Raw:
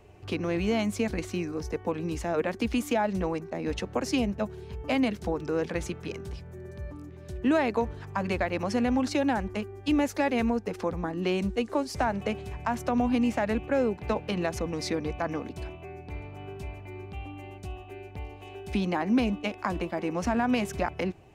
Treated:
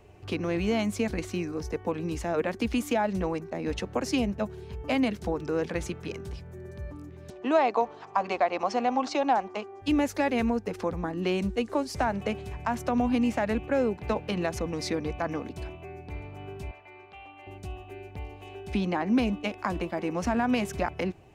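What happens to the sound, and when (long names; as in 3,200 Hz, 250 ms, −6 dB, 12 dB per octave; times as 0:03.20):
0:07.30–0:09.82: loudspeaker in its box 340–6,900 Hz, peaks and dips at 740 Hz +9 dB, 1,100 Hz +7 dB, 1,700 Hz −5 dB
0:16.71–0:17.47: three-way crossover with the lows and the highs turned down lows −20 dB, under 490 Hz, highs −16 dB, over 4,800 Hz
0:18.54–0:19.11: low-pass filter 8,400 Hz → 5,100 Hz 6 dB per octave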